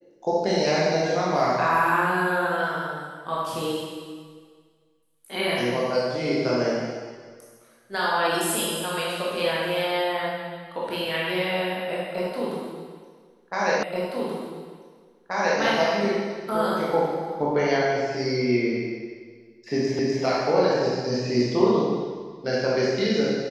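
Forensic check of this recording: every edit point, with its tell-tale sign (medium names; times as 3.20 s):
13.83 s: repeat of the last 1.78 s
19.99 s: repeat of the last 0.25 s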